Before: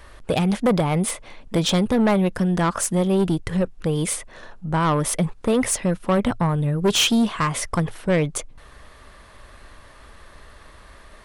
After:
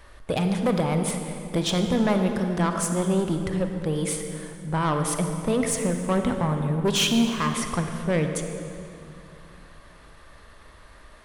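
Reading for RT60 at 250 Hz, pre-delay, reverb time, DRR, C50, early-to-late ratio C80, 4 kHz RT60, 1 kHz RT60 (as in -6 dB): 3.2 s, 32 ms, 2.6 s, 5.0 dB, 5.5 dB, 6.5 dB, 2.0 s, 2.5 s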